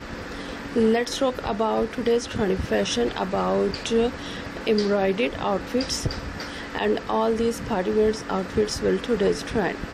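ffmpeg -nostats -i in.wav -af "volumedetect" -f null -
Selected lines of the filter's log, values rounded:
mean_volume: -24.2 dB
max_volume: -9.3 dB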